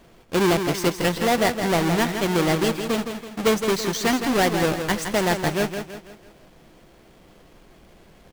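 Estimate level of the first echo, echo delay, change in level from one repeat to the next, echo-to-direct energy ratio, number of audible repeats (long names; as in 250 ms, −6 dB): −7.5 dB, 165 ms, −7.5 dB, −6.5 dB, 4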